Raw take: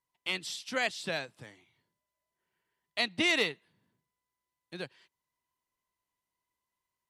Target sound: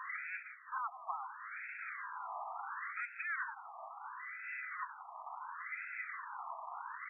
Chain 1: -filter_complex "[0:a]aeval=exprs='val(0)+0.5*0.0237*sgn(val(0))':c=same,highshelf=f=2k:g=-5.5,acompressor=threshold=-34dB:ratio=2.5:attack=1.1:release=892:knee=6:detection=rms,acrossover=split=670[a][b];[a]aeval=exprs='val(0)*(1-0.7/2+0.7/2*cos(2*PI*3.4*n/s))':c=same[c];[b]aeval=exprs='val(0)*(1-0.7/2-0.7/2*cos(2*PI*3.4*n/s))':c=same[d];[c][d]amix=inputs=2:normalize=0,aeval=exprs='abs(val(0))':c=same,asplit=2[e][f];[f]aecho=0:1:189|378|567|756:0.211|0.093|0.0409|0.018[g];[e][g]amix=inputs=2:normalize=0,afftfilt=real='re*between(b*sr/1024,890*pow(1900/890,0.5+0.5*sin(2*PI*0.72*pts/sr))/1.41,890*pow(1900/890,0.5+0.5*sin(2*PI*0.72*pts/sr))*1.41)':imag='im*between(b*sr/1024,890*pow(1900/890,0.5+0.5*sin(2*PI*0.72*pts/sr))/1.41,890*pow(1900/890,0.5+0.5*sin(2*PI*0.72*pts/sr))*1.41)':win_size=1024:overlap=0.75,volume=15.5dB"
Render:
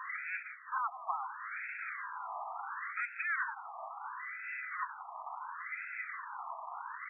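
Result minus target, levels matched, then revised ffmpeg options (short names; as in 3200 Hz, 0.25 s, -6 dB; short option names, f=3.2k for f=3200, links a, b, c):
compressor: peak gain reduction -4.5 dB
-filter_complex "[0:a]aeval=exprs='val(0)+0.5*0.0237*sgn(val(0))':c=same,highshelf=f=2k:g=-5.5,acompressor=threshold=-41.5dB:ratio=2.5:attack=1.1:release=892:knee=6:detection=rms,acrossover=split=670[a][b];[a]aeval=exprs='val(0)*(1-0.7/2+0.7/2*cos(2*PI*3.4*n/s))':c=same[c];[b]aeval=exprs='val(0)*(1-0.7/2-0.7/2*cos(2*PI*3.4*n/s))':c=same[d];[c][d]amix=inputs=2:normalize=0,aeval=exprs='abs(val(0))':c=same,asplit=2[e][f];[f]aecho=0:1:189|378|567|756:0.211|0.093|0.0409|0.018[g];[e][g]amix=inputs=2:normalize=0,afftfilt=real='re*between(b*sr/1024,890*pow(1900/890,0.5+0.5*sin(2*PI*0.72*pts/sr))/1.41,890*pow(1900/890,0.5+0.5*sin(2*PI*0.72*pts/sr))*1.41)':imag='im*between(b*sr/1024,890*pow(1900/890,0.5+0.5*sin(2*PI*0.72*pts/sr))/1.41,890*pow(1900/890,0.5+0.5*sin(2*PI*0.72*pts/sr))*1.41)':win_size=1024:overlap=0.75,volume=15.5dB"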